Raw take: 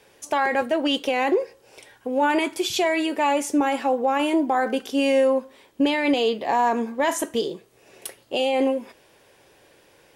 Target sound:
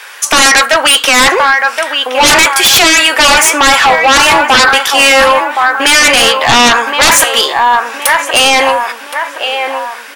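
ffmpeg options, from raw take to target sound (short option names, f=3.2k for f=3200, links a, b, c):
-filter_complex "[0:a]highpass=f=1.3k:t=q:w=2.2,asplit=2[a][b];[b]adelay=1070,lowpass=f=2.1k:p=1,volume=-9dB,asplit=2[c][d];[d]adelay=1070,lowpass=f=2.1k:p=1,volume=0.48,asplit=2[e][f];[f]adelay=1070,lowpass=f=2.1k:p=1,volume=0.48,asplit=2[g][h];[h]adelay=1070,lowpass=f=2.1k:p=1,volume=0.48,asplit=2[i][j];[j]adelay=1070,lowpass=f=2.1k:p=1,volume=0.48[k];[a][c][e][g][i][k]amix=inputs=6:normalize=0,aeval=exprs='0.501*sin(PI/2*7.94*val(0)/0.501)':c=same,volume=3.5dB"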